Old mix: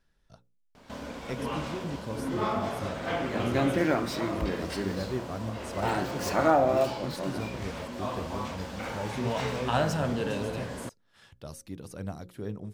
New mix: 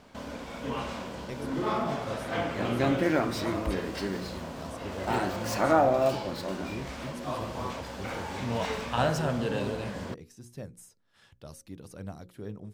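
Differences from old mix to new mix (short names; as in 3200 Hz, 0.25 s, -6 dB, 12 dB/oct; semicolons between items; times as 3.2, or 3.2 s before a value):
speech -3.5 dB; background: entry -0.75 s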